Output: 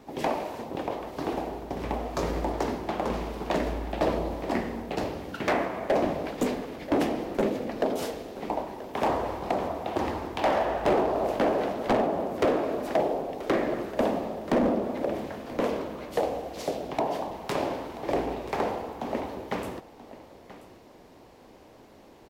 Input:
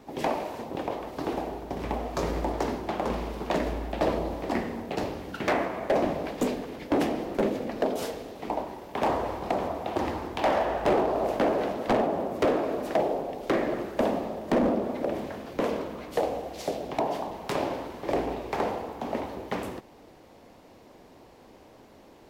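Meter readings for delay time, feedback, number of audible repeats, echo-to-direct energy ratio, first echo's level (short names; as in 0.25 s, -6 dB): 0.982 s, no steady repeat, 1, -16.0 dB, -16.0 dB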